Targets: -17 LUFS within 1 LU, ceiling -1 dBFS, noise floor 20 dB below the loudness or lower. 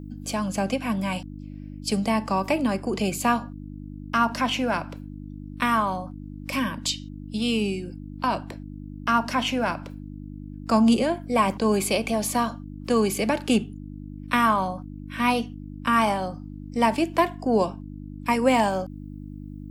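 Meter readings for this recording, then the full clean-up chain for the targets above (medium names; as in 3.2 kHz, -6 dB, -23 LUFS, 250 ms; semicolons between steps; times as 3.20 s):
hum 50 Hz; highest harmonic 300 Hz; hum level -35 dBFS; loudness -24.5 LUFS; peak level -7.5 dBFS; loudness target -17.0 LUFS
-> de-hum 50 Hz, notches 6; trim +7.5 dB; peak limiter -1 dBFS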